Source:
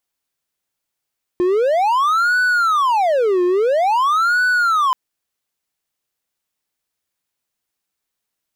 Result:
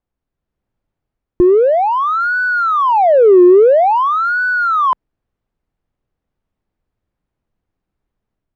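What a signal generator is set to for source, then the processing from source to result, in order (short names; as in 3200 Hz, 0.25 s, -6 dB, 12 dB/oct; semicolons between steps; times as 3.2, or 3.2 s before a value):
siren wail 355–1490 Hz 0.49/s triangle -11 dBFS 3.53 s
LPF 2100 Hz 6 dB/oct; tilt -4.5 dB/oct; AGC gain up to 5 dB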